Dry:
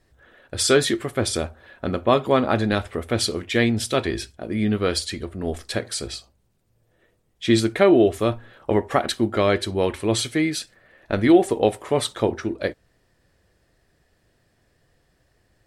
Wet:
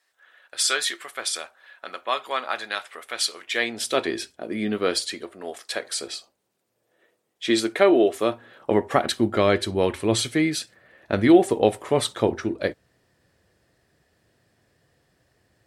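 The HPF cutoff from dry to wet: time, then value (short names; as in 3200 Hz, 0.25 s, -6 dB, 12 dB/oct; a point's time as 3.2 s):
3.33 s 1100 Hz
4.07 s 260 Hz
4.98 s 260 Hz
5.6 s 710 Hz
6.13 s 330 Hz
8.16 s 330 Hz
9.09 s 83 Hz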